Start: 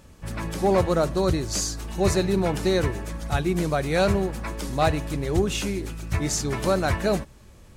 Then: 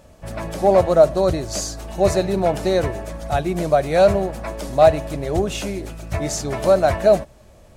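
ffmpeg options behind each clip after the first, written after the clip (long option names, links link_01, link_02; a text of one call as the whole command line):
ffmpeg -i in.wav -af "equalizer=frequency=640:width=2.8:gain=14" out.wav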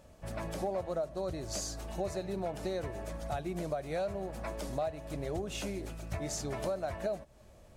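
ffmpeg -i in.wav -af "acompressor=threshold=-24dB:ratio=5,volume=-9dB" out.wav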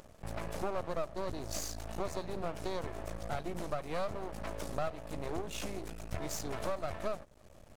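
ffmpeg -i in.wav -af "aeval=exprs='max(val(0),0)':channel_layout=same,acompressor=mode=upward:threshold=-52dB:ratio=2.5,volume=2.5dB" out.wav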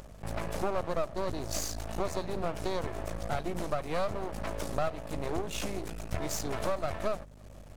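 ffmpeg -i in.wav -af "aeval=exprs='val(0)+0.00178*(sin(2*PI*50*n/s)+sin(2*PI*2*50*n/s)/2+sin(2*PI*3*50*n/s)/3+sin(2*PI*4*50*n/s)/4+sin(2*PI*5*50*n/s)/5)':channel_layout=same,volume=4.5dB" out.wav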